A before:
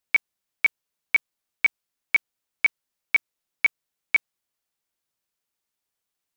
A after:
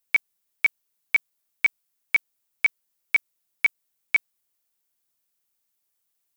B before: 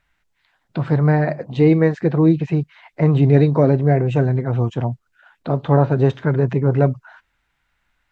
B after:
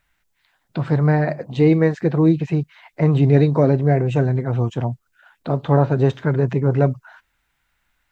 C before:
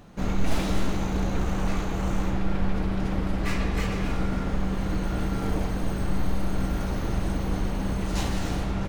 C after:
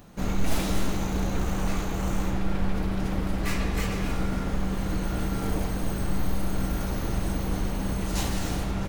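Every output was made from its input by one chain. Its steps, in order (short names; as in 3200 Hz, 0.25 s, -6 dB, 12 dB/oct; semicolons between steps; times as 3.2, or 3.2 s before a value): high shelf 8100 Hz +12 dB; gain -1 dB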